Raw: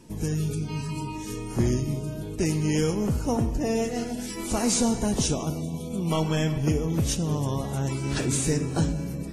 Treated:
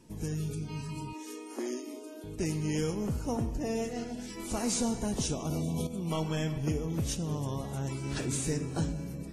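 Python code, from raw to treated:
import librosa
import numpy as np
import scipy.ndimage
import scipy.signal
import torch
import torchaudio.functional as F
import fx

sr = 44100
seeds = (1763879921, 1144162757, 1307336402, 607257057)

y = fx.brickwall_highpass(x, sr, low_hz=240.0, at=(1.13, 2.24))
y = fx.peak_eq(y, sr, hz=11000.0, db=-10.0, octaves=0.66, at=(3.93, 4.4))
y = fx.env_flatten(y, sr, amount_pct=100, at=(5.45, 5.87))
y = F.gain(torch.from_numpy(y), -7.0).numpy()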